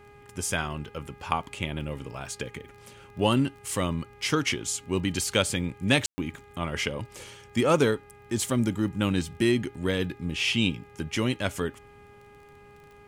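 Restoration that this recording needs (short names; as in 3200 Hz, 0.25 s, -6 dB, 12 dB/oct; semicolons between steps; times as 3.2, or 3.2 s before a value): de-click; de-hum 410 Hz, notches 6; room tone fill 6.06–6.18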